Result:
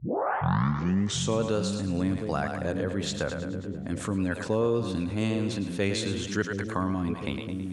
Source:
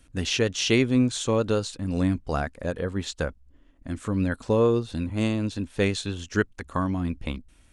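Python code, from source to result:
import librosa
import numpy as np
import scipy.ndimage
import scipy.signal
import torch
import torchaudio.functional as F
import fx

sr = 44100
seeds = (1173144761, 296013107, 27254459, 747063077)

y = fx.tape_start_head(x, sr, length_s=1.26)
y = scipy.signal.sosfilt(scipy.signal.butter(4, 95.0, 'highpass', fs=sr, output='sos'), y)
y = fx.echo_split(y, sr, split_hz=420.0, low_ms=716, high_ms=108, feedback_pct=52, wet_db=-10.0)
y = fx.env_flatten(y, sr, amount_pct=50)
y = y * 10.0 ** (-6.0 / 20.0)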